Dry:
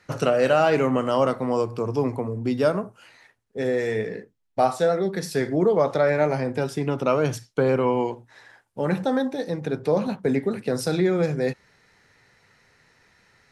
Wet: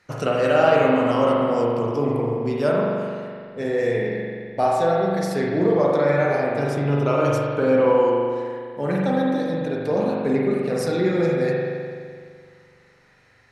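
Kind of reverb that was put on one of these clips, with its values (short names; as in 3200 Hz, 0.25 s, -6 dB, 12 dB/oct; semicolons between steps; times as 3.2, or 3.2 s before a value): spring tank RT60 2.1 s, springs 42 ms, chirp 45 ms, DRR -3.5 dB; gain -2.5 dB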